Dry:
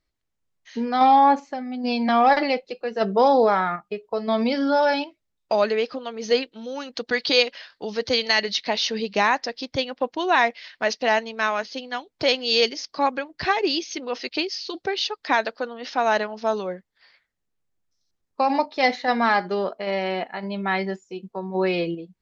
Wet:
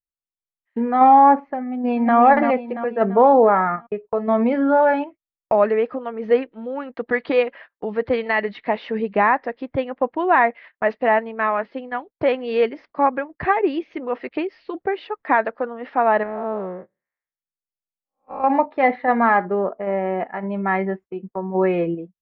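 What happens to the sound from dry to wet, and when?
1.62–2.16 s: echo throw 340 ms, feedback 45%, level -5.5 dB
16.23–18.44 s: spectral blur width 251 ms
19.45–20.20 s: treble shelf 2.2 kHz -11 dB
whole clip: gate -39 dBFS, range -27 dB; low-pass 1.9 kHz 24 dB/octave; band-stop 1.5 kHz, Q 16; trim +4 dB

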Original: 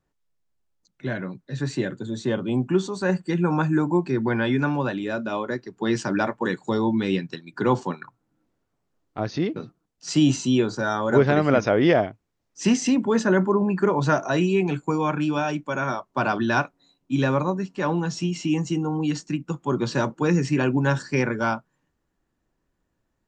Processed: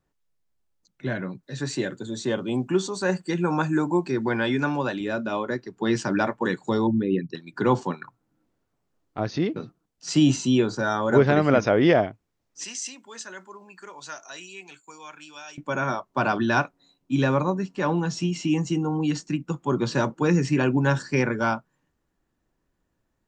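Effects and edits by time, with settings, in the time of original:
1.43–5.01 s: tone controls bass -5 dB, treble +6 dB
6.87–7.35 s: resonances exaggerated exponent 2
12.64–15.58 s: differentiator

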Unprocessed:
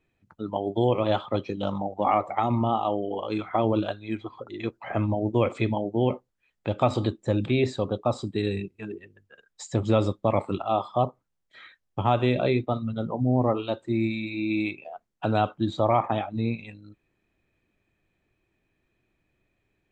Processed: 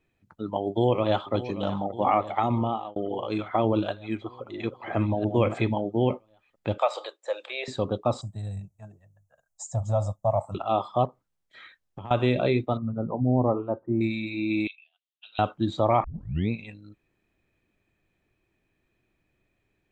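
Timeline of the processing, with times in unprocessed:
0.68–1.33 s: echo throw 580 ms, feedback 70%, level -14 dB
2.43–2.96 s: fade out equal-power
3.90–5.80 s: chunks repeated in reverse 673 ms, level -8 dB
6.78–7.68 s: elliptic high-pass 520 Hz, stop band 70 dB
8.21–10.55 s: FFT filter 130 Hz 0 dB, 400 Hz -29 dB, 640 Hz +5 dB, 2.5 kHz -25 dB, 4.3 kHz -16 dB, 6.3 kHz +3 dB
11.05–12.11 s: compression, threshold -36 dBFS
12.77–14.01 s: low-pass 1.2 kHz 24 dB/octave
14.67–15.39 s: Butterworth band-pass 3.3 kHz, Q 2.7
16.04 s: tape start 0.46 s

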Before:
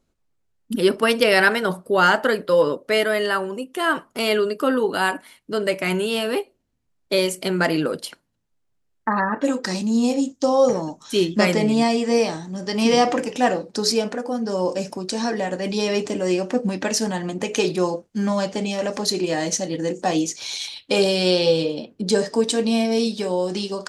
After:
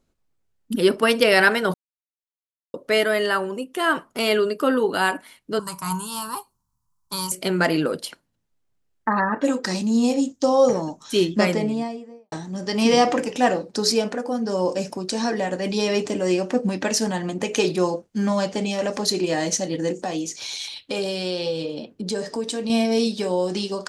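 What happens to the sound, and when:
1.74–2.74 s: mute
5.59–7.32 s: FFT filter 170 Hz 0 dB, 290 Hz -17 dB, 600 Hz -24 dB, 1 kHz +14 dB, 2.1 kHz -21 dB, 5.5 kHz +3 dB, 11 kHz +7 dB
11.18–12.32 s: studio fade out
20.04–22.70 s: compression 2:1, threshold -28 dBFS

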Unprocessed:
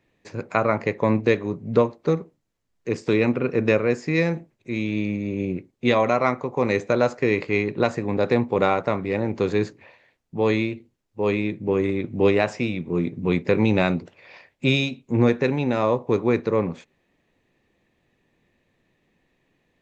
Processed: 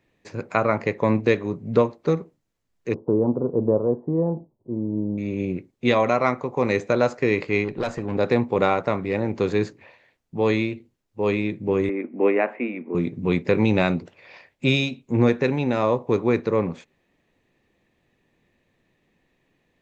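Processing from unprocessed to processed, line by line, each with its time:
2.94–5.18 s: elliptic low-pass 970 Hz, stop band 60 dB
7.64–8.15 s: valve stage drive 19 dB, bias 0.4
11.89–12.95 s: elliptic band-pass 240–2300 Hz

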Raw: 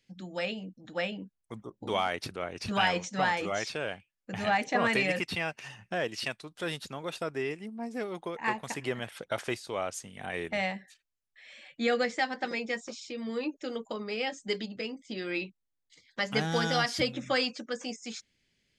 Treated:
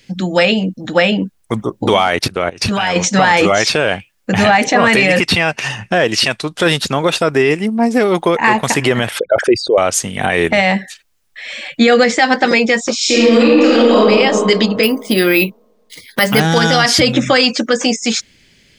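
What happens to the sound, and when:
2.19–2.96 s: level held to a coarse grid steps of 20 dB
5.13–7.31 s: low-pass 11 kHz
9.19–9.78 s: resonances exaggerated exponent 3
12.96–14.01 s: reverb throw, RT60 1.9 s, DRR -8.5 dB
14.83–16.40 s: careless resampling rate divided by 3×, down filtered, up hold
whole clip: loudness maximiser +25 dB; trim -1 dB

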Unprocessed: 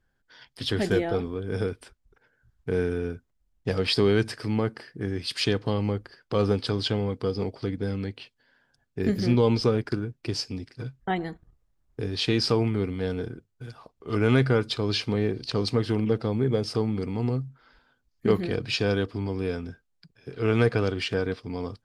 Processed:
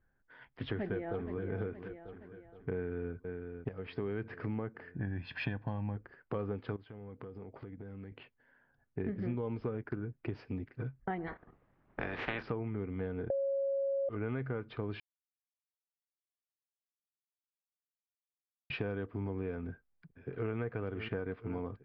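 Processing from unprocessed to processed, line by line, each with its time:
0.64–1.42 s: echo throw 470 ms, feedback 45%, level -13.5 dB
2.74–3.14 s: echo throw 500 ms, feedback 55%, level -13 dB
3.69–4.32 s: fade in quadratic, from -13.5 dB
4.94–5.97 s: comb 1.2 ms, depth 76%
6.76–8.12 s: compression 20:1, threshold -39 dBFS
11.26–12.41 s: spectral peaks clipped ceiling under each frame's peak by 27 dB
13.30–14.09 s: bleep 550 Hz -13 dBFS
15.00–18.70 s: mute
19.65–20.57 s: echo throw 510 ms, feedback 80%, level -16.5 dB
whole clip: low-pass 2.2 kHz 24 dB/octave; compression 6:1, threshold -31 dBFS; trim -2.5 dB

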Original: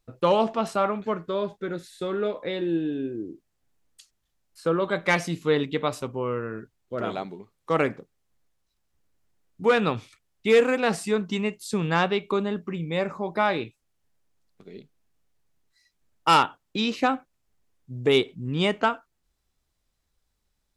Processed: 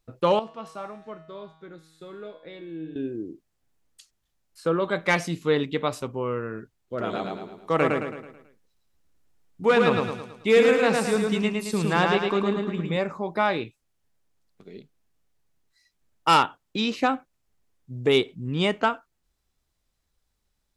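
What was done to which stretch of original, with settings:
0.39–2.96 s: feedback comb 160 Hz, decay 0.98 s, mix 80%
7.02–12.97 s: feedback delay 109 ms, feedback 46%, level -3 dB

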